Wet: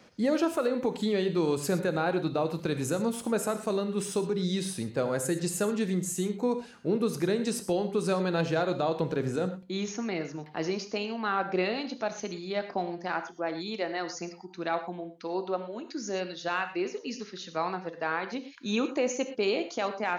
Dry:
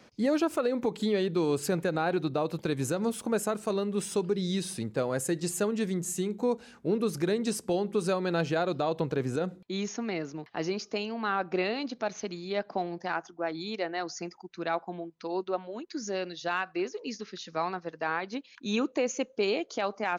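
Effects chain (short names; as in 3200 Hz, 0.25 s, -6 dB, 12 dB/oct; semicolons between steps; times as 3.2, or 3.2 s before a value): non-linear reverb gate 0.14 s flat, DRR 8.5 dB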